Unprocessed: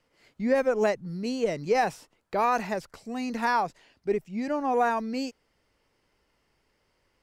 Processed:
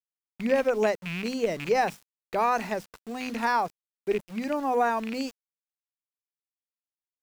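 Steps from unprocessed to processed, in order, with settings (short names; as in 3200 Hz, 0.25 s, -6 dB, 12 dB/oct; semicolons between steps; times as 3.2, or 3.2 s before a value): rattling part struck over -35 dBFS, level -24 dBFS; notches 50/100/150/200/250 Hz; sample gate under -42 dBFS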